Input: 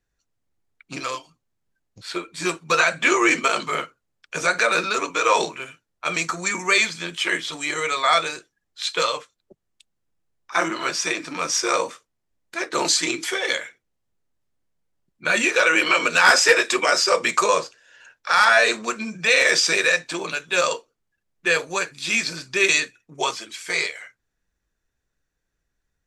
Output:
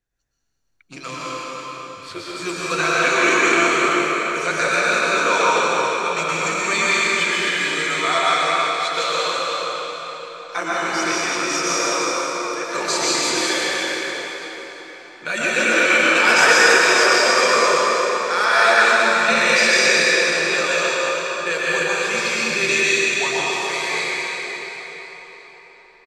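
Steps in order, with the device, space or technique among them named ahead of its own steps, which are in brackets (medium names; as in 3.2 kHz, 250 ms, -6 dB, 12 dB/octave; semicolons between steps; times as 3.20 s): cave (delay 338 ms -9 dB; reverberation RT60 4.6 s, pre-delay 109 ms, DRR -8 dB); trim -5 dB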